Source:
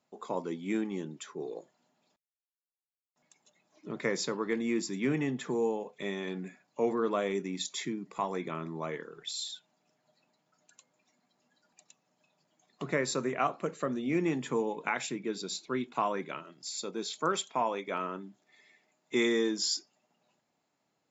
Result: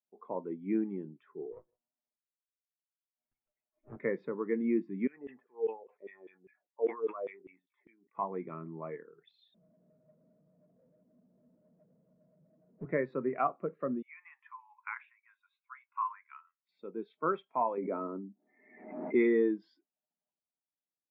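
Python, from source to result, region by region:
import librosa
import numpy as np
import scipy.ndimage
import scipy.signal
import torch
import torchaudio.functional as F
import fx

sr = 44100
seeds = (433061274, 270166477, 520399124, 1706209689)

y = fx.chain(x, sr, fx.lower_of_two(delay_ms=8.2),
    fx.hum_notches(base_hz=50, count=7),
    fx.echo_single(ms=158, db=-21.5), at=(1.52, 3.97))
y = fx.chain(y, sr, fx.filter_lfo_bandpass(shape='saw_down', hz=5.0, low_hz=350.0, high_hz=3700.0, q=2.8),
    fx.sustainer(db_per_s=120.0), at=(5.07, 8.15))
y = fx.chain(y, sr, fx.cheby_ripple(hz=680.0, ripple_db=6),
    fx.power_curve(exponent=0.5), at=(9.54, 12.85))
y = fx.chain(y, sr, fx.ellip_highpass(hz=1000.0, order=4, stop_db=50),
    fx.peak_eq(hz=4800.0, db=-14.0, octaves=0.63), at=(14.02, 16.69))
y = fx.chain(y, sr, fx.ellip_bandpass(low_hz=220.0, high_hz=2300.0, order=3, stop_db=40),
    fx.tilt_eq(slope=-4.0),
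    fx.pre_swell(db_per_s=44.0), at=(17.77, 19.15))
y = scipy.signal.sosfilt(scipy.signal.butter(4, 2500.0, 'lowpass', fs=sr, output='sos'), y)
y = fx.spectral_expand(y, sr, expansion=1.5)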